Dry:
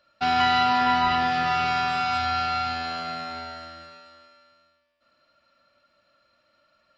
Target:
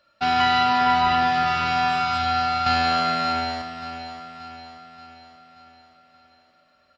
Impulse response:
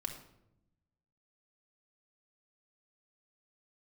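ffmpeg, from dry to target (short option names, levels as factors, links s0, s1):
-filter_complex "[0:a]asettb=1/sr,asplit=3[s0][s1][s2];[s0]atrim=end=2.664[s3];[s1]atrim=start=2.66:end=3.62,asetpts=PTS-STARTPTS,afade=t=in:d=0.004:c=qsin,afade=t=out:st=0.956:d=0.004:c=qsin,acontrast=86[s4];[s2]atrim=start=3.616[s5];[s3][s4]acrossfade=d=0.004:c1=hsin:c2=qsin[s6];[s6][s5]acrossfade=d=0.004:c1=qsin:c2=hsin,asplit=2[s7][s8];[s8]aecho=0:1:580|1160|1740|2320|2900|3480:0.251|0.133|0.0706|0.0374|0.0198|0.0105[s9];[s7][s9]amix=inputs=2:normalize=0,volume=1.19"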